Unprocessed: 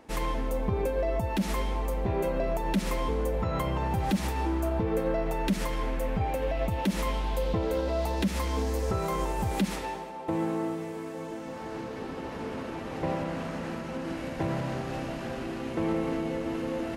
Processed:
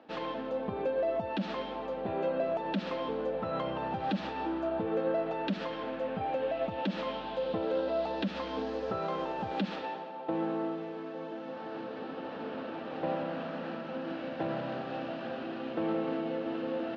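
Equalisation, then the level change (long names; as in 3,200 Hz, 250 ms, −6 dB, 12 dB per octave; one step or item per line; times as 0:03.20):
high-frequency loss of the air 95 metres
loudspeaker in its box 280–4,100 Hz, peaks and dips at 390 Hz −7 dB, 1,000 Hz −7 dB, 2,100 Hz −10 dB
+1.5 dB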